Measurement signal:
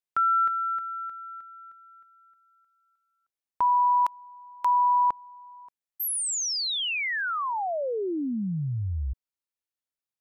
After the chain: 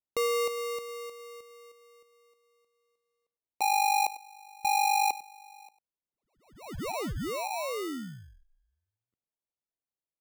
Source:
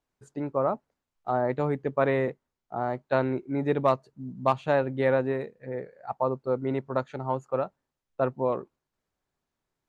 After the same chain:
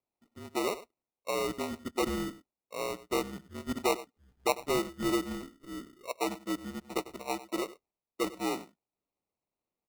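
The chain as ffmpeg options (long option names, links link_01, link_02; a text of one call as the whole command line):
ffmpeg -i in.wav -af "aecho=1:1:99:0.15,highpass=frequency=450:width_type=q:width=0.5412,highpass=frequency=450:width_type=q:width=1.307,lowpass=frequency=3400:width_type=q:width=0.5176,lowpass=frequency=3400:width_type=q:width=0.7071,lowpass=frequency=3400:width_type=q:width=1.932,afreqshift=-190,acrusher=samples=27:mix=1:aa=0.000001,volume=-4.5dB" out.wav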